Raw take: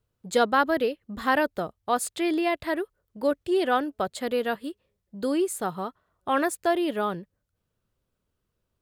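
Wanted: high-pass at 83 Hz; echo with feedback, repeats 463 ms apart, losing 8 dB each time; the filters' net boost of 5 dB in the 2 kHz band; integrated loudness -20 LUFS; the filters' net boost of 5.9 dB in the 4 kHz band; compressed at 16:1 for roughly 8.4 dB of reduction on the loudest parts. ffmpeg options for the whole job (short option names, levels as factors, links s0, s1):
-af "highpass=83,equalizer=f=2000:t=o:g=5.5,equalizer=f=4000:t=o:g=5.5,acompressor=threshold=0.0794:ratio=16,aecho=1:1:463|926|1389|1852|2315:0.398|0.159|0.0637|0.0255|0.0102,volume=2.66"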